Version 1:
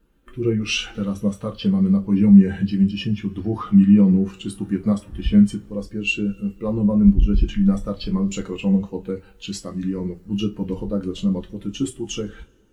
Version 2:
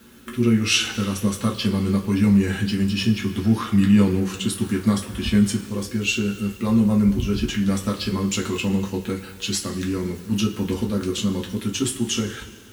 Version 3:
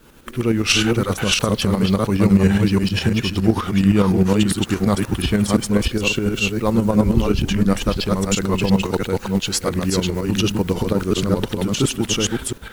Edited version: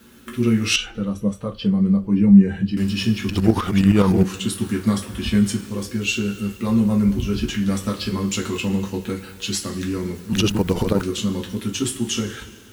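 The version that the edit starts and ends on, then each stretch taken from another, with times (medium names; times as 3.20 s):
2
0.76–2.77 s: from 1
3.29–4.24 s: from 3
10.33–11.02 s: from 3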